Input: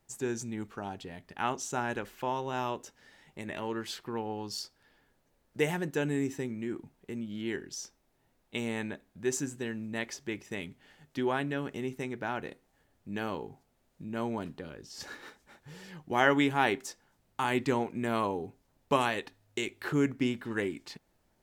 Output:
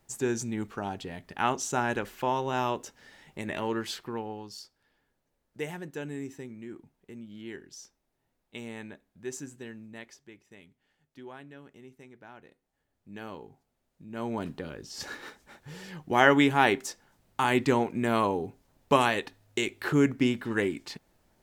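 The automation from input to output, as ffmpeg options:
-af "volume=24dB,afade=t=out:st=3.74:d=0.8:silence=0.281838,afade=t=out:st=9.69:d=0.63:silence=0.375837,afade=t=in:st=12.5:d=0.8:silence=0.354813,afade=t=in:st=14.07:d=0.43:silence=0.298538"

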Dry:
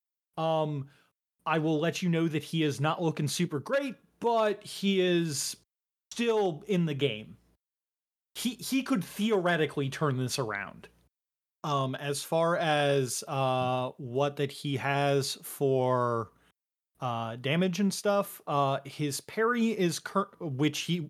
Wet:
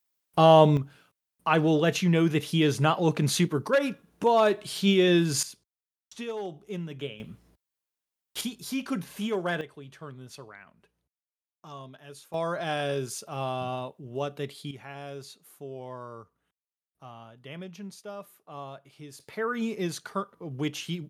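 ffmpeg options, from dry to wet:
-af "asetnsamples=n=441:p=0,asendcmd='0.77 volume volume 5dB;5.43 volume volume -7.5dB;7.2 volume volume 5dB;8.41 volume volume -2.5dB;9.61 volume volume -14dB;12.34 volume volume -3.5dB;14.71 volume volume -13.5dB;19.2 volume volume -3dB',volume=12dB"

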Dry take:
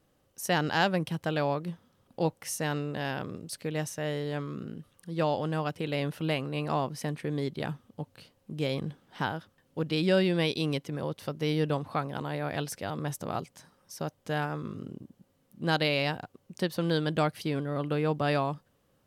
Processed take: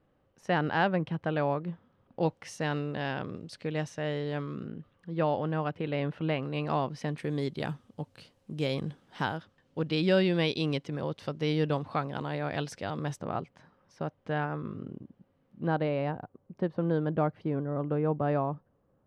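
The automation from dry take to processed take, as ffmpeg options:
-af "asetnsamples=n=441:p=0,asendcmd='2.23 lowpass f 4100;4.67 lowpass f 2400;6.43 lowpass f 4200;7.18 lowpass f 9300;9.38 lowpass f 5300;13.19 lowpass f 2300;15.68 lowpass f 1100',lowpass=2.2k"

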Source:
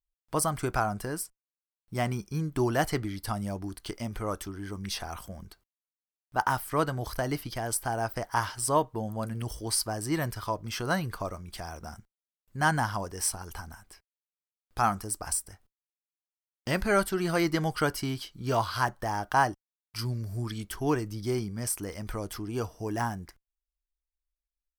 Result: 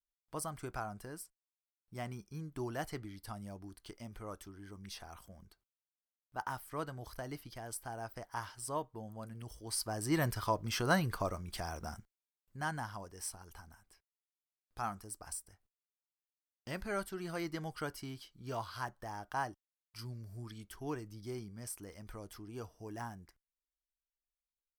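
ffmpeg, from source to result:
-af "volume=-1.5dB,afade=t=in:st=9.63:d=0.63:silence=0.266073,afade=t=out:st=11.89:d=0.77:silence=0.266073"

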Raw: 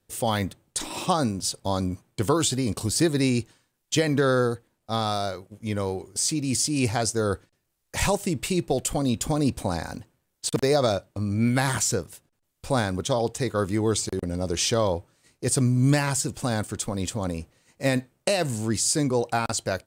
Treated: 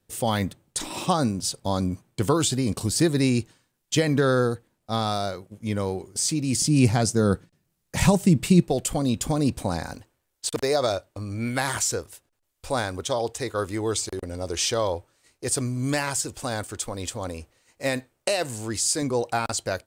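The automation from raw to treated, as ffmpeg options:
-af "asetnsamples=n=441:p=0,asendcmd='6.62 equalizer g 12;8.6 equalizer g 1;9.93 equalizer g -11;19.02 equalizer g -4.5',equalizer=f=170:t=o:w=1.2:g=2.5"

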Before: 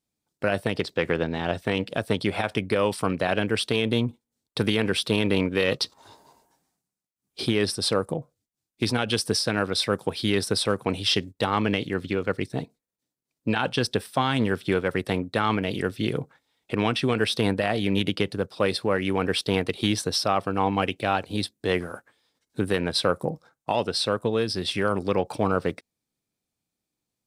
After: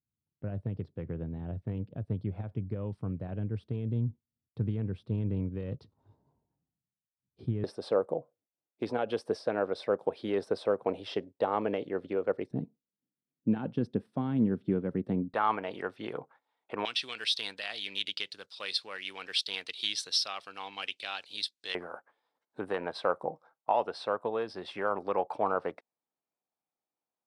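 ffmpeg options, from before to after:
-af "asetnsamples=n=441:p=0,asendcmd='7.64 bandpass f 580;12.51 bandpass f 210;15.34 bandpass f 900;16.85 bandpass f 4100;21.75 bandpass f 840',bandpass=f=100:t=q:w=1.6:csg=0"

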